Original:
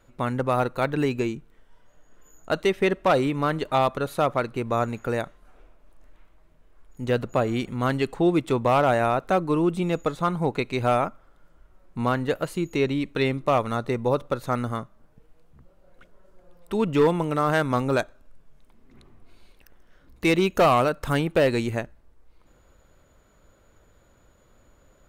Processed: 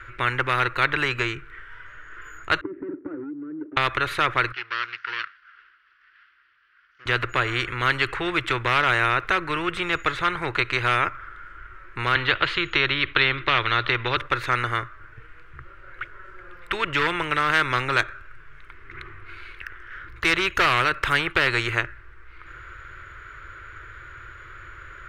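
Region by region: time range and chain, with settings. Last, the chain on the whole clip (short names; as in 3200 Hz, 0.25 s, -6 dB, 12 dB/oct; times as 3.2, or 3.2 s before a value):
2.61–3.77 sample leveller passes 5 + Butterworth band-pass 290 Hz, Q 6.8 + three-band squash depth 100%
4.52–7.06 minimum comb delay 0.65 ms + Chebyshev low-pass 5500 Hz, order 6 + differentiator
12.15–14.17 synth low-pass 3500 Hz, resonance Q 3.5 + three-band squash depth 40%
whole clip: EQ curve 120 Hz 0 dB, 220 Hz -29 dB, 350 Hz -2 dB, 520 Hz -12 dB, 770 Hz -15 dB, 1400 Hz +14 dB, 2100 Hz +11 dB, 4100 Hz -6 dB, 6600 Hz -13 dB, 14000 Hz -20 dB; spectral compressor 2:1; gain -1.5 dB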